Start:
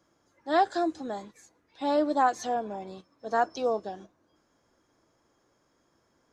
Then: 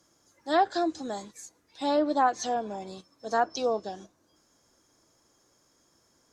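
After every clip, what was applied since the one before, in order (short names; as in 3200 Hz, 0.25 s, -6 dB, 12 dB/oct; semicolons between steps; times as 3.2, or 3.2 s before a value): treble ducked by the level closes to 2400 Hz, closed at -20 dBFS; tone controls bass +1 dB, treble +13 dB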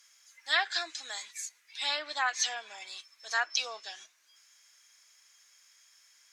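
resonant high-pass 2200 Hz, resonance Q 2.4; gain +5.5 dB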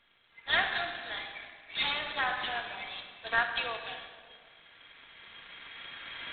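recorder AGC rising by 9.7 dB/s; shoebox room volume 2600 m³, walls mixed, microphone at 1.7 m; gain -1.5 dB; G.726 16 kbps 8000 Hz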